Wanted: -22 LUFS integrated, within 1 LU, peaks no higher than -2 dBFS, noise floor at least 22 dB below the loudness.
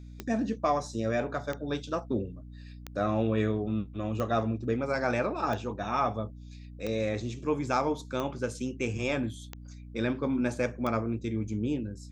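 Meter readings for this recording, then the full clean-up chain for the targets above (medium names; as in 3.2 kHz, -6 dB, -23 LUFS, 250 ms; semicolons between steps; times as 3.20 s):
clicks found 9; hum 60 Hz; highest harmonic 300 Hz; hum level -42 dBFS; loudness -31.0 LUFS; peak level -14.0 dBFS; loudness target -22.0 LUFS
-> de-click; de-hum 60 Hz, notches 5; trim +9 dB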